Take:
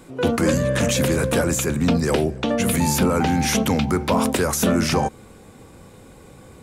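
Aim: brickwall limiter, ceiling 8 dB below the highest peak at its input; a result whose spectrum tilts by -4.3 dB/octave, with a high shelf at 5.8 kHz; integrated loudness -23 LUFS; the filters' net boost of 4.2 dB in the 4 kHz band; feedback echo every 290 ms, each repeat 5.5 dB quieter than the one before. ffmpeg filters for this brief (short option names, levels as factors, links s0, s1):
-af "equalizer=f=4000:t=o:g=4,highshelf=f=5800:g=4,alimiter=limit=0.188:level=0:latency=1,aecho=1:1:290|580|870|1160|1450|1740|2030:0.531|0.281|0.149|0.079|0.0419|0.0222|0.0118,volume=0.891"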